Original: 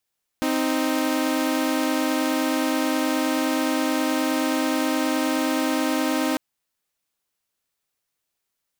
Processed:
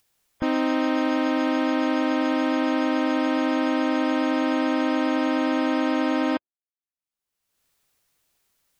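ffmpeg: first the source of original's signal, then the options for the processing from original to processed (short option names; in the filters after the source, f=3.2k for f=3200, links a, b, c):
-f lavfi -i "aevalsrc='0.0891*((2*mod(261.63*t,1)-1)+(2*mod(311.13*t,1)-1))':d=5.95:s=44100"
-af "afftdn=nr=31:nf=-31,lowshelf=f=110:g=6,acompressor=mode=upward:threshold=-40dB:ratio=2.5"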